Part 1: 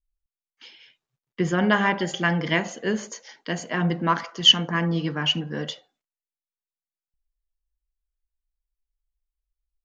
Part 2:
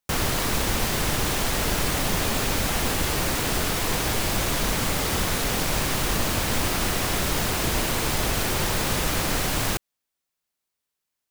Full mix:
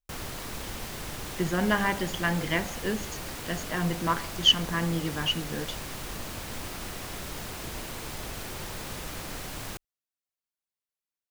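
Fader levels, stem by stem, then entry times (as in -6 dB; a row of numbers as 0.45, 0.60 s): -5.0, -13.0 dB; 0.00, 0.00 s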